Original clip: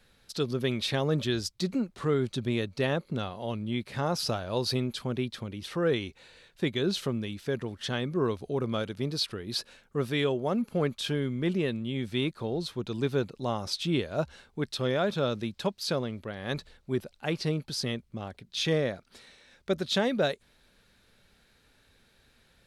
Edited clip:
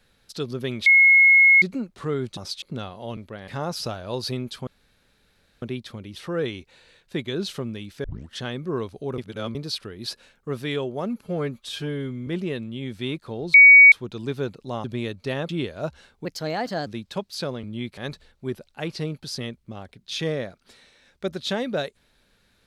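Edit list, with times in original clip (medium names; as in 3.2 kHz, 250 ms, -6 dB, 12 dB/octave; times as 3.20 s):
0.86–1.62 s: bleep 2.17 kHz -10.5 dBFS
2.37–3.02 s: swap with 13.59–13.84 s
3.57–3.91 s: swap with 16.12–16.43 s
5.10 s: insert room tone 0.95 s
7.52 s: tape start 0.26 s
8.66–9.03 s: reverse
10.70–11.40 s: stretch 1.5×
12.67 s: add tone 2.25 kHz -6 dBFS 0.38 s
14.60–15.35 s: speed 122%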